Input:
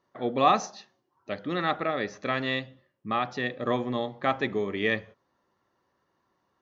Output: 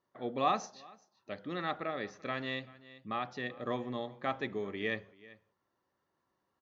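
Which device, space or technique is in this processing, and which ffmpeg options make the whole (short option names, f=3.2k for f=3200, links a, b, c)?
ducked delay: -filter_complex "[0:a]asplit=3[a][b][c];[b]adelay=386,volume=-5.5dB[d];[c]apad=whole_len=308663[e];[d][e]sidechaincompress=threshold=-42dB:ratio=10:attack=49:release=933[f];[a][f]amix=inputs=2:normalize=0,volume=-8.5dB"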